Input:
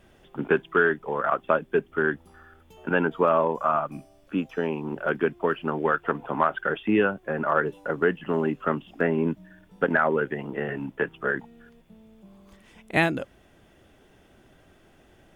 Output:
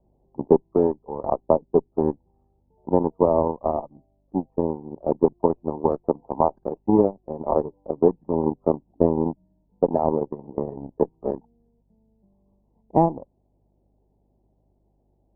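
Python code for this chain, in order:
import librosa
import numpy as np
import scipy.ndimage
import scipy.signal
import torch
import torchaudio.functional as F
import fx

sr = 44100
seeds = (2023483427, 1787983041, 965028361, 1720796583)

p1 = fx.rider(x, sr, range_db=10, speed_s=0.5)
p2 = x + (p1 * librosa.db_to_amplitude(-3.0))
p3 = fx.add_hum(p2, sr, base_hz=50, snr_db=26)
p4 = fx.cheby_harmonics(p3, sr, harmonics=(5, 6, 7), levels_db=(-28, -33, -16), full_scale_db=-1.5)
p5 = scipy.signal.sosfilt(scipy.signal.ellip(4, 1.0, 40, 920.0, 'lowpass', fs=sr, output='sos'), p4)
y = p5 * librosa.db_to_amplitude(3.0)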